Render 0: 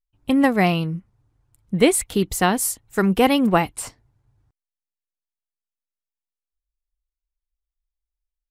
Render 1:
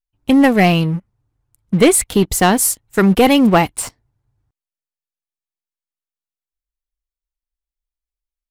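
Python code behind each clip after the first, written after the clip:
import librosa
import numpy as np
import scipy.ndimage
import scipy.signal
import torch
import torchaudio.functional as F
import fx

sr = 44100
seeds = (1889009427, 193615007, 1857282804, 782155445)

y = fx.leveller(x, sr, passes=2)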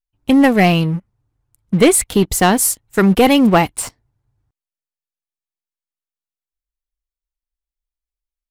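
y = x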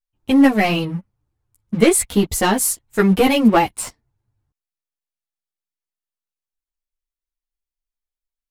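y = fx.ensemble(x, sr)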